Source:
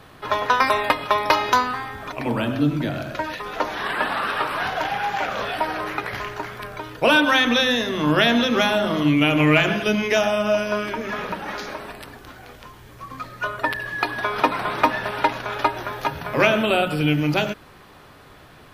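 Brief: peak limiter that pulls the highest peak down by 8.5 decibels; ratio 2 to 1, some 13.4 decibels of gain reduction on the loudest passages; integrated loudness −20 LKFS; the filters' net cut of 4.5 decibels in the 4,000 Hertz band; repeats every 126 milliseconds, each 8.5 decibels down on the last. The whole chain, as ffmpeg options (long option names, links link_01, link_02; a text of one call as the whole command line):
ffmpeg -i in.wav -af "equalizer=frequency=4000:width_type=o:gain=-6,acompressor=threshold=-40dB:ratio=2,alimiter=limit=-24dB:level=0:latency=1,aecho=1:1:126|252|378|504:0.376|0.143|0.0543|0.0206,volume=15dB" out.wav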